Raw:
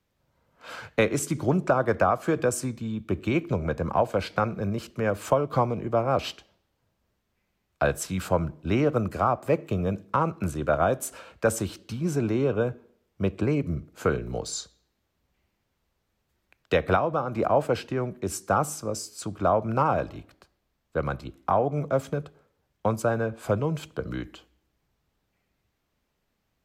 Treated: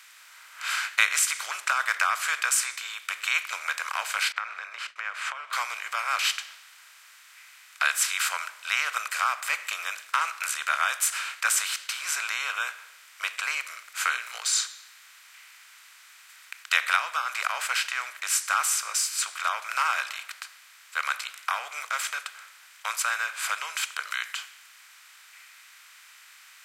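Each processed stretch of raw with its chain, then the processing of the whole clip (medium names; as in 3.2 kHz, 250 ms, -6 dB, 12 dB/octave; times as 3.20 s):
4.32–5.53 s: expander -45 dBFS + compression 10:1, threshold -30 dBFS + low-pass 2.1 kHz
whole clip: spectral levelling over time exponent 0.6; high-pass 1.5 kHz 24 dB/octave; trim +6.5 dB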